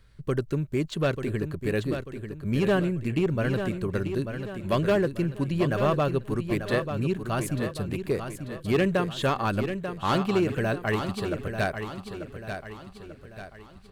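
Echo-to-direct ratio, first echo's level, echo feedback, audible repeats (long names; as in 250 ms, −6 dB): −7.0 dB, −8.0 dB, 45%, 4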